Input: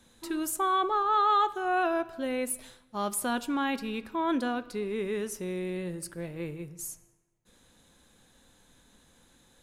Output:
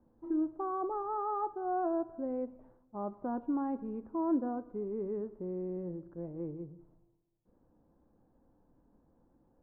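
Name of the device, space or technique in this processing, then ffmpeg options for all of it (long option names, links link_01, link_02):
under water: -af "lowpass=frequency=950:width=0.5412,lowpass=frequency=950:width=1.3066,equalizer=frequency=310:width_type=o:width=0.26:gain=6.5,volume=-5dB"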